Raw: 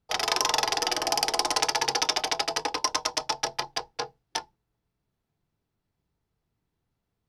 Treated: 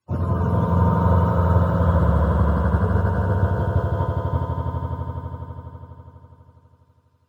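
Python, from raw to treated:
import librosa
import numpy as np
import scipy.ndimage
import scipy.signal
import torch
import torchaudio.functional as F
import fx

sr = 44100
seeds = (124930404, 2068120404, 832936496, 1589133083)

y = fx.octave_mirror(x, sr, pivot_hz=670.0)
y = fx.band_shelf(y, sr, hz=1200.0, db=9.5, octaves=1.0)
y = fx.echo_swell(y, sr, ms=82, loudest=5, wet_db=-5)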